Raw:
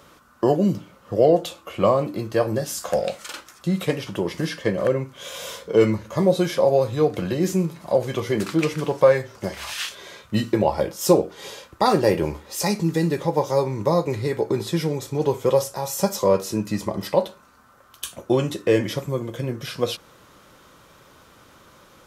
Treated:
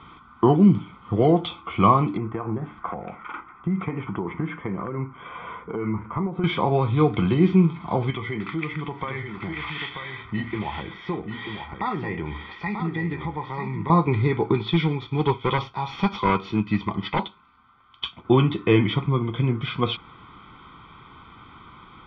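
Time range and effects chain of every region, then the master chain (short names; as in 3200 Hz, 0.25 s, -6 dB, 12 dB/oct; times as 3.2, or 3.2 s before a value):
2.17–6.44 LPF 1900 Hz 24 dB/oct + bell 73 Hz -5 dB 2.7 oct + compressor, threshold -25 dBFS
8.1–13.9 bell 1900 Hz +12 dB 0.29 oct + compressor 2:1, threshold -37 dBFS + echo 0.937 s -7 dB
14.54–18.25 high shelf 2700 Hz +12 dB + hard clip -15 dBFS + upward expander, over -39 dBFS
whole clip: elliptic low-pass 3300 Hz, stop band 60 dB; comb 0.9 ms, depth 90%; gain +2.5 dB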